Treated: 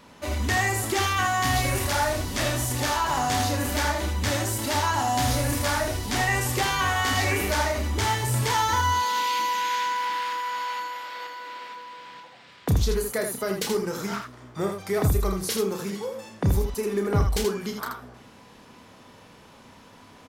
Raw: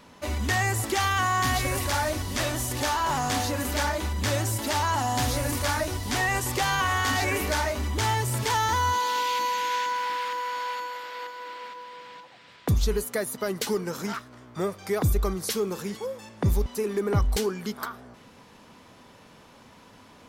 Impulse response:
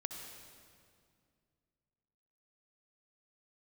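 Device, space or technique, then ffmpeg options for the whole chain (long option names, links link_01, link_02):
slapback doubling: -filter_complex "[0:a]asplit=3[link_01][link_02][link_03];[link_02]adelay=31,volume=-6.5dB[link_04];[link_03]adelay=80,volume=-6dB[link_05];[link_01][link_04][link_05]amix=inputs=3:normalize=0"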